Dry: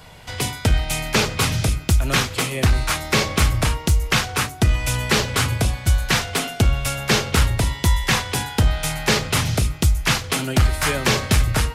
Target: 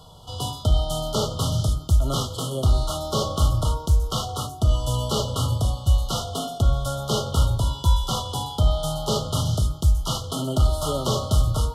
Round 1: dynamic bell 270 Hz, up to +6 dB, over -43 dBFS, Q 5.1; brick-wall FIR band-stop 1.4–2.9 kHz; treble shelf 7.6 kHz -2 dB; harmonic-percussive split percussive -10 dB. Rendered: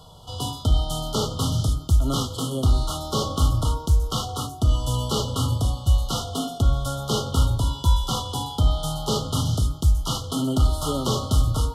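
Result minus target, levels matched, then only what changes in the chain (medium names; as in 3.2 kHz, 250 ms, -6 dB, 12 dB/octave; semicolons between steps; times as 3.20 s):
250 Hz band +2.5 dB
change: dynamic bell 610 Hz, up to +6 dB, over -43 dBFS, Q 5.1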